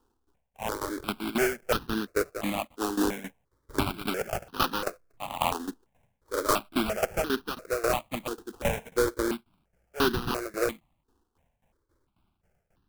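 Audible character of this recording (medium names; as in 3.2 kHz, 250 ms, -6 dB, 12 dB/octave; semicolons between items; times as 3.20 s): tremolo saw down 3.7 Hz, depth 85%; aliases and images of a low sample rate 1.9 kHz, jitter 20%; notches that jump at a steady rate 2.9 Hz 600–2200 Hz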